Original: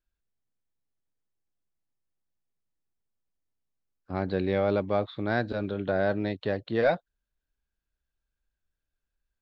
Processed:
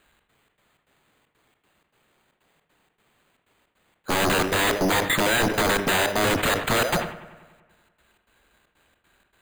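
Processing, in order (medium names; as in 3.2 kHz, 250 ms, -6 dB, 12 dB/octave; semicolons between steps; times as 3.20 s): high-pass 290 Hz 6 dB/octave; in parallel at -1.5 dB: compressor with a negative ratio -35 dBFS; on the sum: peak limiter -20 dBFS, peak gain reduction 7.5 dB; trance gate "xx.xx.xx.xx" 156 bpm -24 dB; sine folder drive 14 dB, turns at -20 dBFS; sample-and-hold 8×; bucket-brigade echo 95 ms, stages 2048, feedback 64%, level -15 dB; reverberation RT60 1.1 s, pre-delay 4 ms, DRR 18.5 dB; decay stretcher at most 100 dB/s; trim +2.5 dB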